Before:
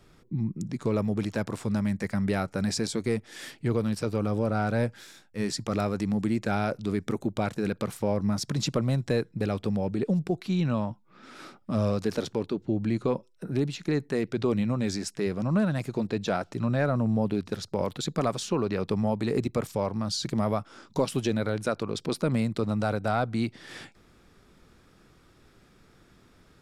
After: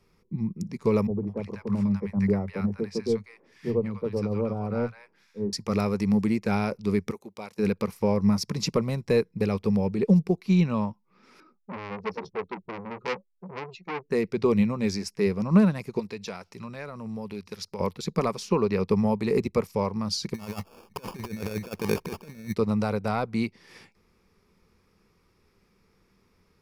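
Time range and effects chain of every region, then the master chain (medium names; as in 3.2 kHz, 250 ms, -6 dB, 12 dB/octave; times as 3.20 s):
1.07–5.53 s: low-pass 1.5 kHz 6 dB/octave + three bands offset in time mids, lows, highs 30/200 ms, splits 170/940 Hz
7.11–7.59 s: high-pass 820 Hz 6 dB/octave + dynamic bell 1.7 kHz, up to -5 dB, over -49 dBFS, Q 0.84
11.40–14.11 s: spectral contrast enhancement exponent 2.3 + doubling 16 ms -9.5 dB + transformer saturation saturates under 2.3 kHz
15.99–17.80 s: tilt shelf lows -5 dB, about 1.1 kHz + compression 2:1, threshold -32 dBFS
20.34–22.55 s: treble shelf 8.1 kHz -8.5 dB + compressor with a negative ratio -31 dBFS, ratio -0.5 + sample-rate reducer 2 kHz
whole clip: rippled EQ curve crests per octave 0.84, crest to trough 8 dB; upward expansion 1.5:1, over -43 dBFS; trim +4.5 dB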